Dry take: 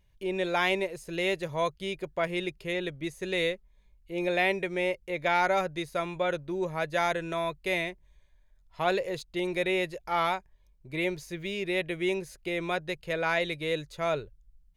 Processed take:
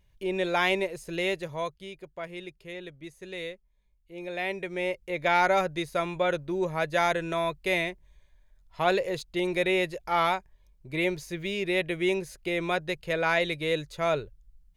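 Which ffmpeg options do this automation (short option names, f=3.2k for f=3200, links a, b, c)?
-af "volume=12.5dB,afade=t=out:st=1.09:d=0.82:silence=0.316228,afade=t=in:st=4.27:d=1.1:silence=0.281838"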